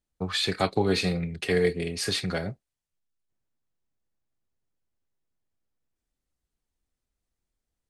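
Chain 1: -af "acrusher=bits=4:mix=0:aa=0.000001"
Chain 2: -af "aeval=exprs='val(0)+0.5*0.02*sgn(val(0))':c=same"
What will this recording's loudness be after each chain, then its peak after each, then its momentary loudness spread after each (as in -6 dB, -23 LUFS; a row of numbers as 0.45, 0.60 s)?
-26.5, -26.0 LUFS; -9.5, -9.5 dBFS; 6, 19 LU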